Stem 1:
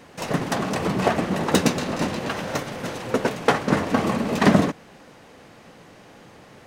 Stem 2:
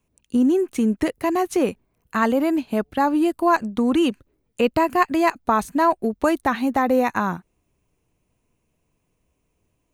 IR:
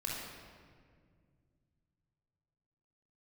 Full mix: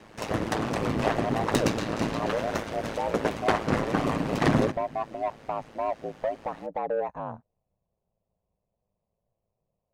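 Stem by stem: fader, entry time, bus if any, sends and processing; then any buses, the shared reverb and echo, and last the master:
−0.5 dB, 0.00 s, send −23.5 dB, high-shelf EQ 5,000 Hz −4.5 dB
−4.0 dB, 0.00 s, no send, drawn EQ curve 140 Hz 0 dB, 300 Hz −23 dB, 570 Hz −2 dB, 1,600 Hz −25 dB; mid-hump overdrive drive 18 dB, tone 1,700 Hz, clips at −11.5 dBFS; low-pass filter 8,500 Hz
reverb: on, RT60 2.0 s, pre-delay 23 ms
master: soft clipping −11.5 dBFS, distortion −16 dB; ring modulation 55 Hz

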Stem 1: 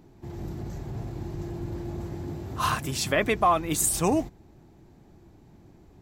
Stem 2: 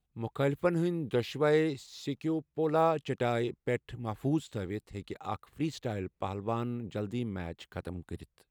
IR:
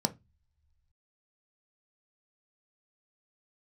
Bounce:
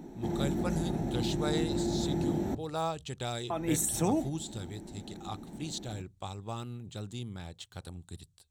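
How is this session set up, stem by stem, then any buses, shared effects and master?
+2.0 dB, 0.00 s, muted 0:02.55–0:03.50, send −8.5 dB, downward compressor 12 to 1, threshold −33 dBFS, peak gain reduction 16.5 dB
−2.5 dB, 0.00 s, send −21 dB, octave-band graphic EQ 125/250/500/2,000/4,000/8,000 Hz +5/−9/−8/−8/+8/+11 dB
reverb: on, pre-delay 3 ms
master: no processing

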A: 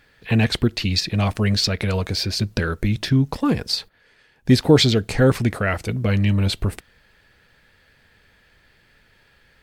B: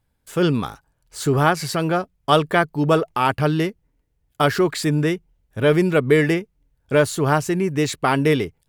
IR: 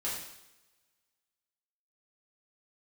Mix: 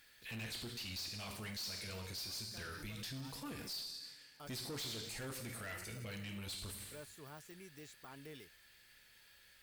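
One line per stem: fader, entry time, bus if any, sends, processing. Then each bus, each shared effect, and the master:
0.0 dB, 0.00 s, send −6 dB, no processing
−15.0 dB, 0.00 s, no send, de-essing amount 85%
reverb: on, pre-delay 3 ms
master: first-order pre-emphasis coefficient 0.9; tube saturation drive 31 dB, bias 0.25; brickwall limiter −39.5 dBFS, peak gain reduction 11 dB

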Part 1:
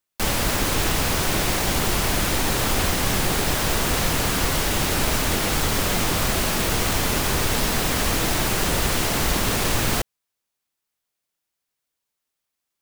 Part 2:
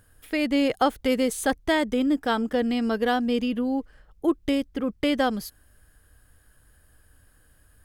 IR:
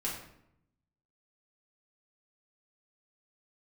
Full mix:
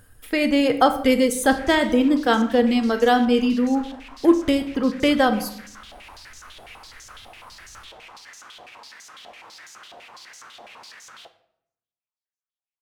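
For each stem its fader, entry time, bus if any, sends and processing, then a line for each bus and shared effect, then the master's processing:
−5.0 dB, 1.25 s, send −10 dB, brickwall limiter −14.5 dBFS, peak gain reduction 6 dB; flanger 1.6 Hz, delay 8.3 ms, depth 1.6 ms, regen −68%; band-pass on a step sequencer 12 Hz 710–6,300 Hz
+2.5 dB, 0.00 s, send −6.5 dB, reverb reduction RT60 0.99 s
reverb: on, RT60 0.75 s, pre-delay 4 ms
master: no processing

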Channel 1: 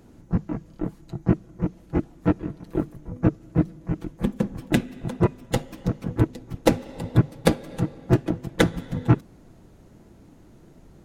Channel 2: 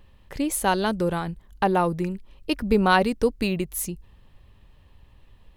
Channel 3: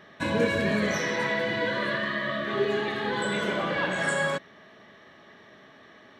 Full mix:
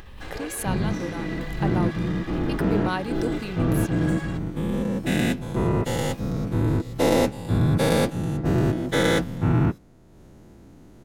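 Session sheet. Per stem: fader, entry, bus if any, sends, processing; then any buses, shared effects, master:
−8.5 dB, 0.45 s, no send, every bin's largest magnitude spread in time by 240 ms
−10.0 dB, 0.00 s, no send, background raised ahead of every attack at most 34 dB per second
−2.5 dB, 0.00 s, no send, lower of the sound and its delayed copy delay 2.5 ms; automatic ducking −7 dB, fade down 0.25 s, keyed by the second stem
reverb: not used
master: upward compression, threshold −40 dBFS

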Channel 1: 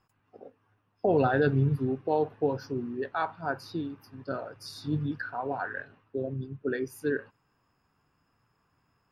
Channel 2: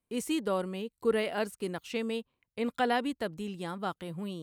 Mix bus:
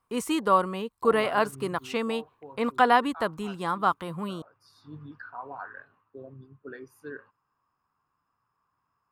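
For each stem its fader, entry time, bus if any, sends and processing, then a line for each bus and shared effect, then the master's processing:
−13.0 dB, 0.00 s, no send, automatic ducking −8 dB, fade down 1.80 s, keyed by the second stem
+3.0 dB, 0.00 s, no send, no processing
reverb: not used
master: parametric band 1,100 Hz +14.5 dB 0.78 octaves

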